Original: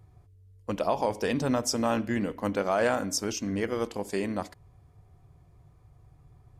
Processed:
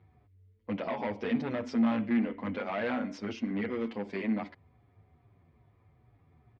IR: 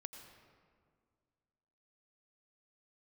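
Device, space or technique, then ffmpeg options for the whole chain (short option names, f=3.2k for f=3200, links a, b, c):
barber-pole flanger into a guitar amplifier: -filter_complex "[0:a]asplit=2[a][b];[b]adelay=8.5,afreqshift=-2.4[c];[a][c]amix=inputs=2:normalize=1,asoftclip=type=tanh:threshold=-29dB,highpass=93,equalizer=f=140:t=q:w=4:g=-6,equalizer=f=230:t=q:w=4:g=10,equalizer=f=2.1k:t=q:w=4:g=7,lowpass=f=3.7k:w=0.5412,lowpass=f=3.7k:w=1.3066"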